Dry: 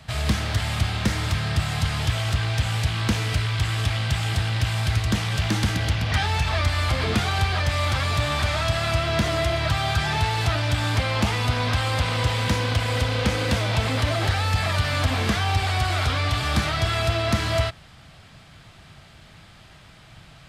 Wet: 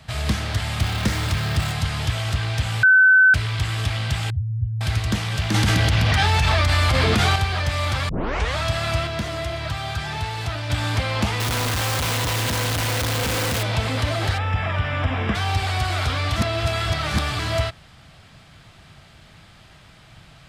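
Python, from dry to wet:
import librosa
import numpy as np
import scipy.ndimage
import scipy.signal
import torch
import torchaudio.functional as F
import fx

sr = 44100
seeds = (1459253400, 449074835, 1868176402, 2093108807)

y = fx.zero_step(x, sr, step_db=-30.5, at=(0.8, 1.72))
y = fx.spec_expand(y, sr, power=3.6, at=(4.3, 4.81))
y = fx.env_flatten(y, sr, amount_pct=100, at=(5.54, 7.36))
y = fx.clip_1bit(y, sr, at=(11.4, 13.63))
y = fx.savgol(y, sr, points=25, at=(14.37, 15.34), fade=0.02)
y = fx.edit(y, sr, fx.bleep(start_s=2.83, length_s=0.51, hz=1520.0, db=-9.5),
    fx.tape_start(start_s=8.09, length_s=0.47),
    fx.clip_gain(start_s=9.07, length_s=1.63, db=-4.5),
    fx.reverse_span(start_s=16.36, length_s=1.03), tone=tone)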